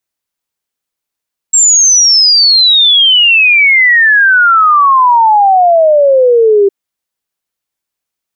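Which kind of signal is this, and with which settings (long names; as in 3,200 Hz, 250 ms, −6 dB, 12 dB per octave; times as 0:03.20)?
exponential sine sweep 7,600 Hz → 390 Hz 5.16 s −3.5 dBFS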